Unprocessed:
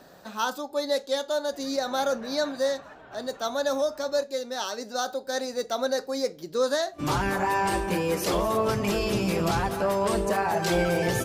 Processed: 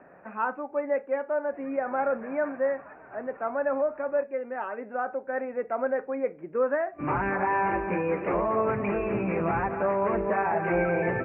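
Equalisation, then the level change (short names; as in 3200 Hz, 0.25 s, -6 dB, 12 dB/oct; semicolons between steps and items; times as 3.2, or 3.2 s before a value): steep low-pass 2500 Hz 96 dB/oct; low shelf 120 Hz -9.5 dB; 0.0 dB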